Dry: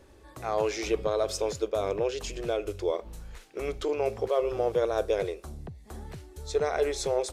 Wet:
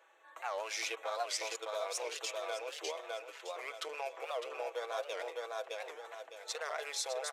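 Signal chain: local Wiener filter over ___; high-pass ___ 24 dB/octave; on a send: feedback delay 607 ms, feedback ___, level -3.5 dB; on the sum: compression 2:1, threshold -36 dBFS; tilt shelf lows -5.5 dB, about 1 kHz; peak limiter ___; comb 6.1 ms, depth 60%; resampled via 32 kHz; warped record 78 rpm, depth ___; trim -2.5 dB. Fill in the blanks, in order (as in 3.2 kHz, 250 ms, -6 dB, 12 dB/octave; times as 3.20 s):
9 samples, 580 Hz, 27%, -22.5 dBFS, 160 cents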